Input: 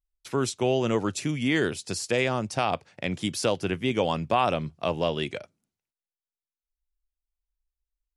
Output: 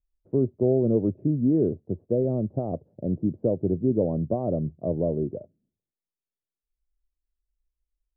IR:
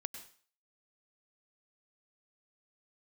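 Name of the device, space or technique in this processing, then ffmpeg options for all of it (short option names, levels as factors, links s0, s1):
under water: -af "lowpass=f=440:w=0.5412,lowpass=f=440:w=1.3066,equalizer=f=620:t=o:w=0.36:g=7.5,volume=1.68"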